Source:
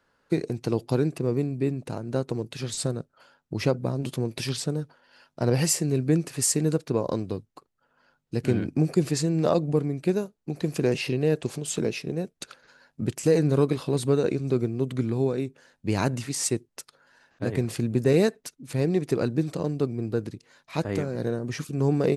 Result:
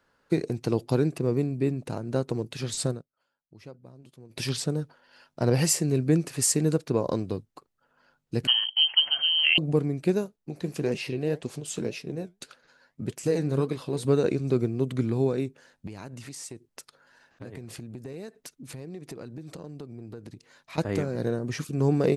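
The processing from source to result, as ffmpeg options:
-filter_complex "[0:a]asettb=1/sr,asplit=3[a][b][c];[a]atrim=end=8.474[d];[b]atrim=start=8.47:end=9.58,asetpts=PTS-STARTPTS,afade=t=in:d=0.004:c=qsin,afade=t=out:st=1.106:d=0.004:c=qsin,lowpass=f=2.8k:t=q:w=0.5098,lowpass=f=2.8k:t=q:w=0.6013,lowpass=f=2.8k:t=q:w=0.9,lowpass=f=2.8k:t=q:w=2.563,afreqshift=-3300[e];[c]atrim=start=9.576[f];[d][e]acrossfade=d=0.004:c1=hsin:c2=qsin[g];[g][f]acrossfade=d=0.004:c1=qsin:c2=hsin,asettb=1/sr,asplit=3[h][i][j];[h]atrim=end=10.364[k];[i]atrim=start=10.36:end=14.05,asetpts=PTS-STARTPTS,afade=t=in:d=0.004:c=qsin,afade=t=out:st=3.686:d=0.004:c=qsin,flanger=delay=3.8:depth=8:regen=69:speed=1.8:shape=triangular[l];[j]atrim=start=14.046[m];[k][l]acrossfade=d=0.004:c1=hsin:c2=qsin[n];[n][m]acrossfade=d=0.004:c1=qsin:c2=hsin,asettb=1/sr,asplit=3[o][p][q];[o]atrim=end=15.874[r];[p]atrim=start=15.87:end=20.78,asetpts=PTS-STARTPTS,afade=t=in:d=0.004:c=qsin,afade=t=out:st=4.906:d=0.004:c=qsin,acompressor=threshold=-38dB:ratio=5:attack=3.2:release=140:knee=1:detection=peak[s];[q]atrim=start=20.776[t];[r][s]acrossfade=d=0.004:c1=hsin:c2=qsin[u];[u][t]acrossfade=d=0.004:c1=qsin:c2=hsin,asplit=3[v][w][x];[v]atrim=end=3.03,asetpts=PTS-STARTPTS,afade=t=out:st=2.9:d=0.13:silence=0.0841395[y];[w]atrim=start=3.03:end=4.29,asetpts=PTS-STARTPTS,volume=-21.5dB[z];[x]atrim=start=4.29,asetpts=PTS-STARTPTS,afade=t=in:d=0.13:silence=0.0841395[aa];[y][z][aa]concat=n=3:v=0:a=1"

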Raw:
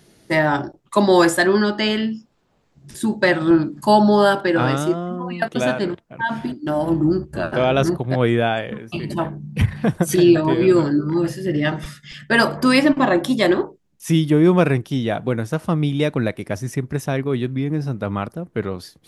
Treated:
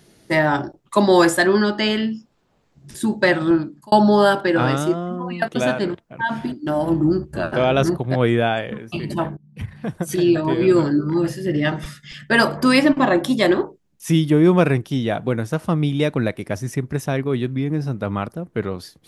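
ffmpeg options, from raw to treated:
-filter_complex "[0:a]asplit=3[a][b][c];[a]atrim=end=3.92,asetpts=PTS-STARTPTS,afade=t=out:st=3.41:d=0.51[d];[b]atrim=start=3.92:end=9.37,asetpts=PTS-STARTPTS,afade=t=in:d=0.004:c=hsin,afade=t=out:st=5.446:d=0.004:c=hsin:silence=0.0749894[e];[c]atrim=start=9.37,asetpts=PTS-STARTPTS,afade=t=in:d=1.46:silence=0.0749894[f];[d][e][f]concat=n=3:v=0:a=1"

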